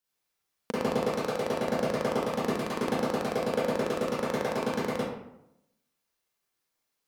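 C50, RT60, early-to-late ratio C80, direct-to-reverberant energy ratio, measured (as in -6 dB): -4.0 dB, 0.80 s, 1.5 dB, -8.5 dB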